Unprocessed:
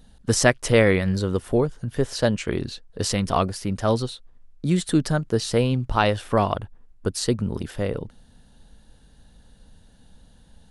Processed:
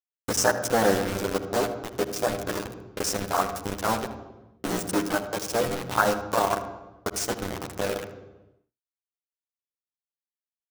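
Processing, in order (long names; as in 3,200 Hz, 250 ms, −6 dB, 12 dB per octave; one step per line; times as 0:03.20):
sub-harmonics by changed cycles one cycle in 3, muted
meter weighting curve A
downward expander −42 dBFS
elliptic band-stop filter 1,600–5,300 Hz
upward compression, threshold −27 dBFS
bit reduction 5 bits
ambience of single reflections 10 ms −3.5 dB, 80 ms −15.5 dB
on a send at −10.5 dB: convolution reverb RT60 1.0 s, pre-delay 45 ms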